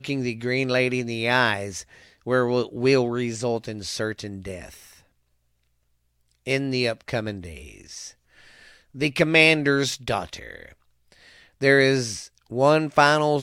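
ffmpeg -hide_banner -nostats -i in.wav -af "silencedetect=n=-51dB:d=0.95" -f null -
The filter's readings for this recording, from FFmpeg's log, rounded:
silence_start: 5.06
silence_end: 6.31 | silence_duration: 1.25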